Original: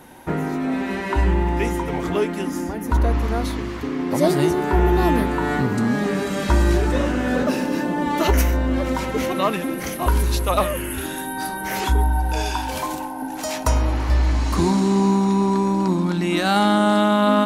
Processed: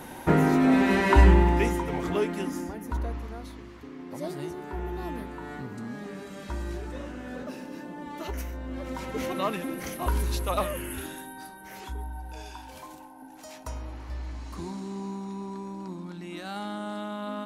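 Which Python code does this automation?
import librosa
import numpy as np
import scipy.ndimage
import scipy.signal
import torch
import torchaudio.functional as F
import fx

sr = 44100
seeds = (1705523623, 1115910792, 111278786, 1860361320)

y = fx.gain(x, sr, db=fx.line((1.22, 3.0), (1.84, -5.5), (2.43, -5.5), (3.38, -17.0), (8.56, -17.0), (9.26, -8.0), (10.97, -8.0), (11.55, -18.0)))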